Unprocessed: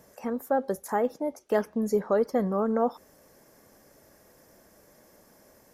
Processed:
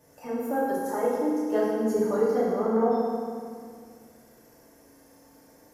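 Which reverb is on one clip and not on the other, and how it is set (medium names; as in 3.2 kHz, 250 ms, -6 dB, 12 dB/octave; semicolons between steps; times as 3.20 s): FDN reverb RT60 2.1 s, low-frequency decay 1.25×, high-frequency decay 0.9×, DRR -9.5 dB; trim -9 dB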